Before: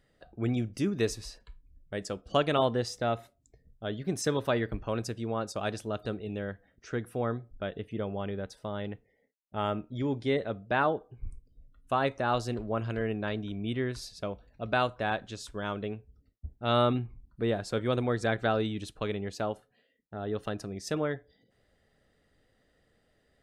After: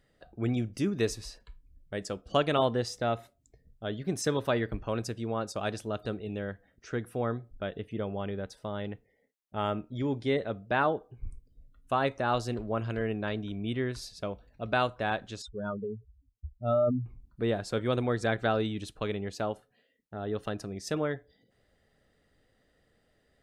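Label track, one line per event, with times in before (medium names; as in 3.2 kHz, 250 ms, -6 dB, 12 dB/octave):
15.420000	17.060000	spectral contrast enhancement exponent 2.9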